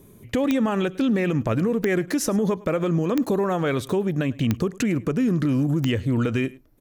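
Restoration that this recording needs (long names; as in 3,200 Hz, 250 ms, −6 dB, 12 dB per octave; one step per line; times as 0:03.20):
click removal
echo removal 104 ms −22 dB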